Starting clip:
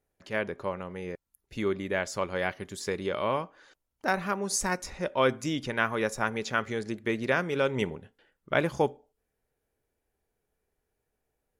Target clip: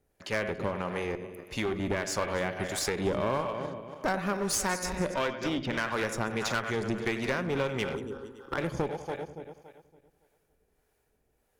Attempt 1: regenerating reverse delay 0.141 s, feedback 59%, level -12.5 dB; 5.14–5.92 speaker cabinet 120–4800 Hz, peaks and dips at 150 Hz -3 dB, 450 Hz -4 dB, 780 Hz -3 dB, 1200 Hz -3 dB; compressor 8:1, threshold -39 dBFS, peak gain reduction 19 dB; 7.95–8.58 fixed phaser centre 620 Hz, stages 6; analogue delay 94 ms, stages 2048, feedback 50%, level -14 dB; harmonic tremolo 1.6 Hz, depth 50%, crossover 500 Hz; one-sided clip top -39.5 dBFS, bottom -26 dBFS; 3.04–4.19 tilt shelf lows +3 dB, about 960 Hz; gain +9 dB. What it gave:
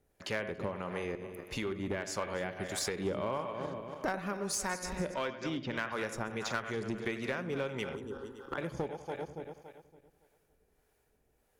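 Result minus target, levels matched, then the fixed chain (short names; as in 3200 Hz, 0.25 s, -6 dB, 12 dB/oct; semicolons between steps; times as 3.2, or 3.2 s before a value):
compressor: peak gain reduction +7 dB
regenerating reverse delay 0.141 s, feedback 59%, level -12.5 dB; 5.14–5.92 speaker cabinet 120–4800 Hz, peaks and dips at 150 Hz -3 dB, 450 Hz -4 dB, 780 Hz -3 dB, 1200 Hz -3 dB; compressor 8:1, threshold -31 dBFS, peak gain reduction 12 dB; 7.95–8.58 fixed phaser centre 620 Hz, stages 6; analogue delay 94 ms, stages 2048, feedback 50%, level -14 dB; harmonic tremolo 1.6 Hz, depth 50%, crossover 500 Hz; one-sided clip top -39.5 dBFS, bottom -26 dBFS; 3.04–4.19 tilt shelf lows +3 dB, about 960 Hz; gain +9 dB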